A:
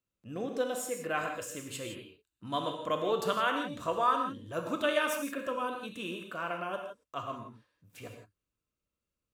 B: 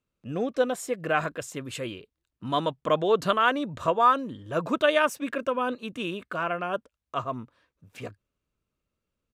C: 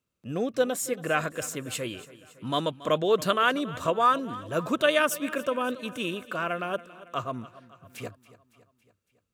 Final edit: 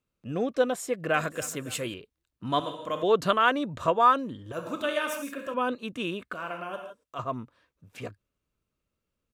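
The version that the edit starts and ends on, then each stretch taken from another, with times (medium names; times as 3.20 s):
B
1.14–1.94 s: from C
2.60–3.03 s: from A
4.52–5.54 s: from A
6.34–7.19 s: from A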